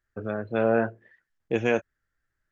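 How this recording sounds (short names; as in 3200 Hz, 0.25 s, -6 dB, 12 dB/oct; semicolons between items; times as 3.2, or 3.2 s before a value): noise floor -82 dBFS; spectral tilt -3.0 dB/oct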